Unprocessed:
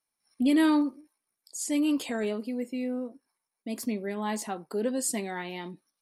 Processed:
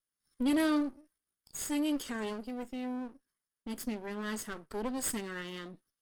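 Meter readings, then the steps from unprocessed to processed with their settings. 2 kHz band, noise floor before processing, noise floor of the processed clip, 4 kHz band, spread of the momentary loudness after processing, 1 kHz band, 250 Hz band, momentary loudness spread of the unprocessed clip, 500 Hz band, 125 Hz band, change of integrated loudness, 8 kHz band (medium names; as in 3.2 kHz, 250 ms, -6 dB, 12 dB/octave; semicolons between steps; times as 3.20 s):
-3.5 dB, under -85 dBFS, under -85 dBFS, -3.5 dB, 14 LU, -5.5 dB, -6.0 dB, 15 LU, -6.5 dB, no reading, -6.0 dB, -4.5 dB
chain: comb filter that takes the minimum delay 0.61 ms; dynamic bell 9.6 kHz, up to +4 dB, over -53 dBFS, Q 0.89; trim -5 dB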